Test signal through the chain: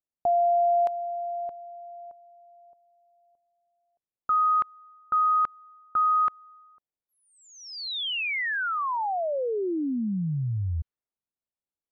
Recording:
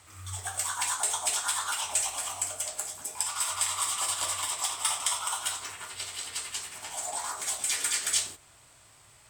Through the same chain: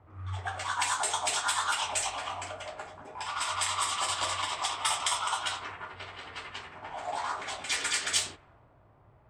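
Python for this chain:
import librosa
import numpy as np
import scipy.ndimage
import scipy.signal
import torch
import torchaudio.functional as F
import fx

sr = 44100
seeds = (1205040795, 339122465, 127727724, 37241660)

y = fx.high_shelf(x, sr, hz=7000.0, db=-12.0)
y = fx.env_lowpass(y, sr, base_hz=690.0, full_db=-28.0)
y = y * librosa.db_to_amplitude(4.5)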